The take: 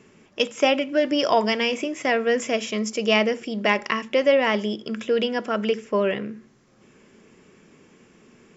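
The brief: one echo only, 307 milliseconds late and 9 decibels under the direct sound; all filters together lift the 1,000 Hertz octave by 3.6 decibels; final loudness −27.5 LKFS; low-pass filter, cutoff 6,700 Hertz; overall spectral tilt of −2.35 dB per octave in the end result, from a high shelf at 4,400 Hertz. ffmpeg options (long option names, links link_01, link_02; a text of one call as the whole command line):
ffmpeg -i in.wav -af "lowpass=6700,equalizer=frequency=1000:width_type=o:gain=5,highshelf=frequency=4400:gain=-7.5,aecho=1:1:307:0.355,volume=-6dB" out.wav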